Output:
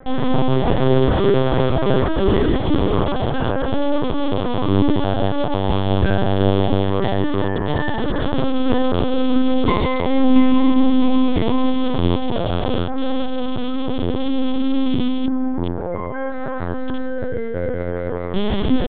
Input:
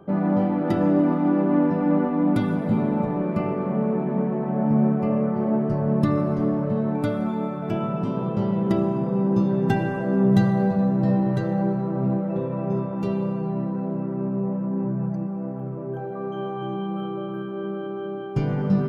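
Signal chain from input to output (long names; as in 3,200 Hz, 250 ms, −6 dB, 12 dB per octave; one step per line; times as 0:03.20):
loose part that buzzes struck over −26 dBFS, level −23 dBFS
mains-hum notches 60/120/180/240/300/360/420/480/540 Hz
in parallel at −6 dB: soft clipping −24 dBFS, distortion −9 dB
on the sum: pitch shifter +5 semitones
on a send: delay with a band-pass on its return 181 ms, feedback 65%, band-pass 460 Hz, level −8 dB
on the sum: linear-prediction vocoder at 8 kHz pitch kept
level +3.5 dB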